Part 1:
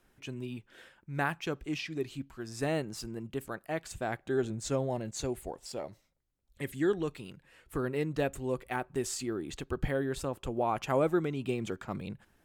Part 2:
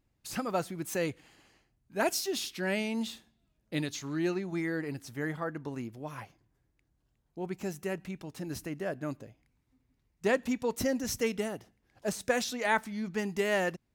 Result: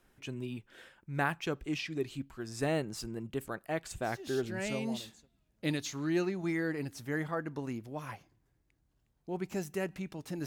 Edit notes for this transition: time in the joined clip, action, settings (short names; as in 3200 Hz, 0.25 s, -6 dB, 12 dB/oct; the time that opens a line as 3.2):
part 1
4.63 switch to part 2 from 2.72 s, crossfade 1.30 s linear